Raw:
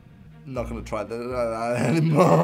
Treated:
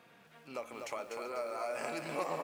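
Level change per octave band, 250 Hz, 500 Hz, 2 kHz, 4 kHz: -23.0 dB, -15.0 dB, -10.0 dB, -9.5 dB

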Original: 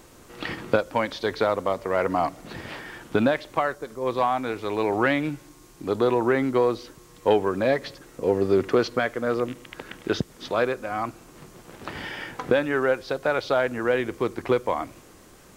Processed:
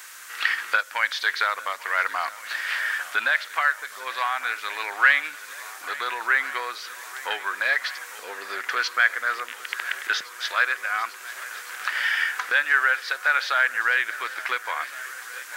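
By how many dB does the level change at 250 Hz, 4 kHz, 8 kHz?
under -25 dB, +6.5 dB, no reading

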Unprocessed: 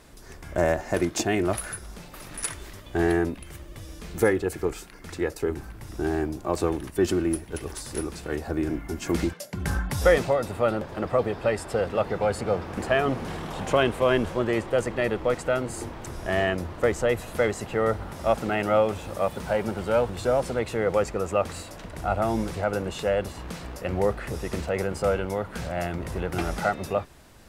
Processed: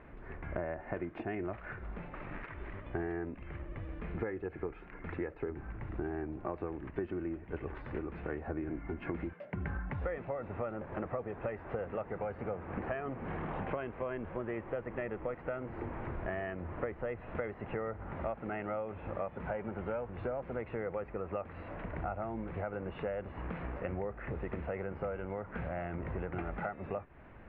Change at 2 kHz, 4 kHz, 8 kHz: -13.0 dB, under -25 dB, under -40 dB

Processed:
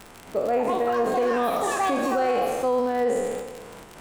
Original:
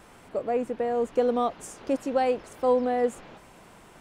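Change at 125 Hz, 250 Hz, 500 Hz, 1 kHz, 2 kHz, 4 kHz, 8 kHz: no reading, +1.5 dB, +2.5 dB, +5.5 dB, +9.0 dB, +7.0 dB, +7.5 dB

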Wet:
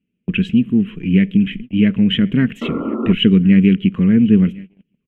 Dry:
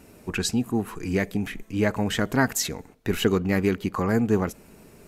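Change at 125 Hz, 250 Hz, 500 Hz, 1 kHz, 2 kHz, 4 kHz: +11.0 dB, +13.0 dB, +1.0 dB, -5.5 dB, +2.0 dB, +9.0 dB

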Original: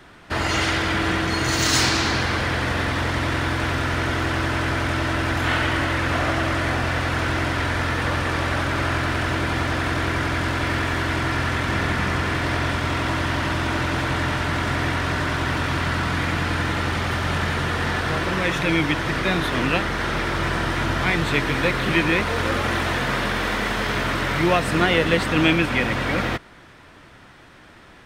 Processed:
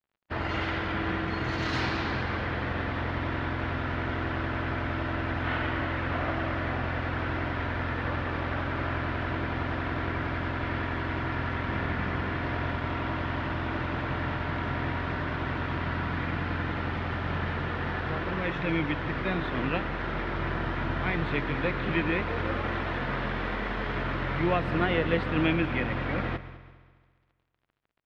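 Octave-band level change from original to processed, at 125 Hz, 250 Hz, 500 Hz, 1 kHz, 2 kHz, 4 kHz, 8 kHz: -7.0 dB, -7.0 dB, -7.0 dB, -8.0 dB, -9.5 dB, -14.0 dB, under -25 dB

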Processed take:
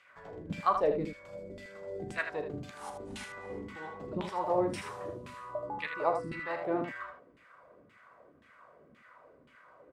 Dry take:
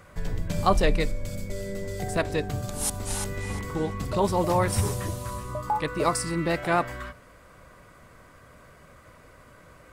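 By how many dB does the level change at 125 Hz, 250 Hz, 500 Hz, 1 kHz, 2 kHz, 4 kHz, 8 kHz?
-16.5 dB, -8.5 dB, -5.5 dB, -6.5 dB, -6.0 dB, -13.0 dB, -22.5 dB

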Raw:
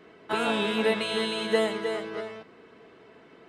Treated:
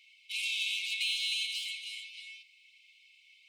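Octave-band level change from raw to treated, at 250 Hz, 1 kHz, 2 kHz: under -40 dB, under -40 dB, -3.5 dB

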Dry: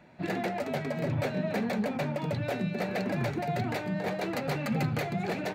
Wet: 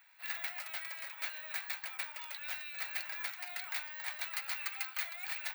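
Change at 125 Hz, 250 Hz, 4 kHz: under -40 dB, under -40 dB, -0.5 dB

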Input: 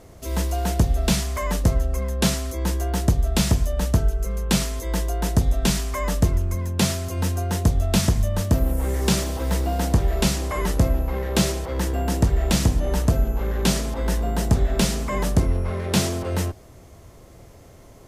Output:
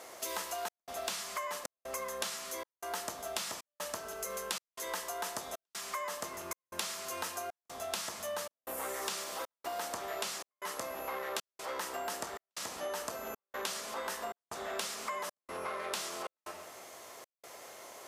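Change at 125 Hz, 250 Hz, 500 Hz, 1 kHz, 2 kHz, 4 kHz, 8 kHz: under -40 dB, -27.5 dB, -12.0 dB, -7.5 dB, -8.5 dB, -11.0 dB, -10.0 dB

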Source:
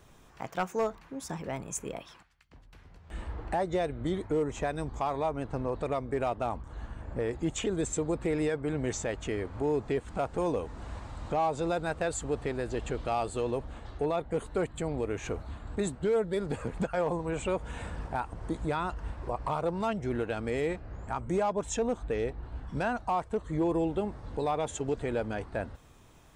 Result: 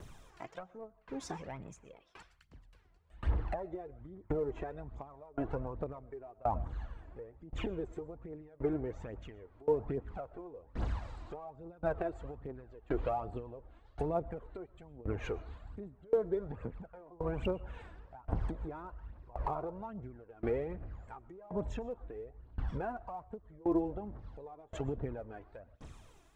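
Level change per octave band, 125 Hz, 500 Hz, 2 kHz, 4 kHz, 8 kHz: -5.5 dB, -7.5 dB, -12.0 dB, -12.5 dB, under -20 dB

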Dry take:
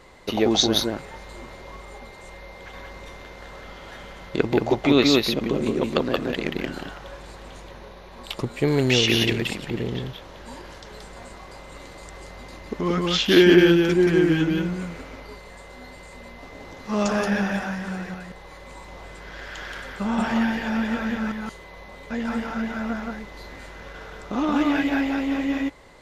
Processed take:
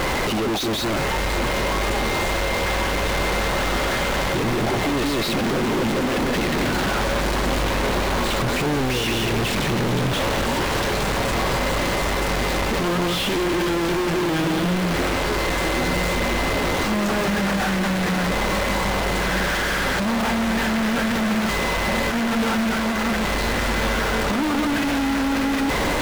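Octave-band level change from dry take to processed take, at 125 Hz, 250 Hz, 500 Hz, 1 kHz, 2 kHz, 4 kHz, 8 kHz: +4.5 dB, +1.0 dB, +2.0 dB, +9.5 dB, +7.0 dB, +2.5 dB, +7.5 dB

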